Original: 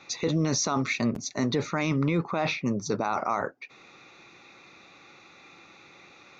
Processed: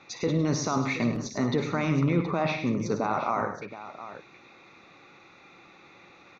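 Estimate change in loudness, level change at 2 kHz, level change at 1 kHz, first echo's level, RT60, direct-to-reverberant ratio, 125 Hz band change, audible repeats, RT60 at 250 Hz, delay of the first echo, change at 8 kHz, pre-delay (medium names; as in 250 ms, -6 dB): 0.0 dB, -1.0 dB, +0.5 dB, -11.5 dB, no reverb, no reverb, +1.5 dB, 4, no reverb, 58 ms, no reading, no reverb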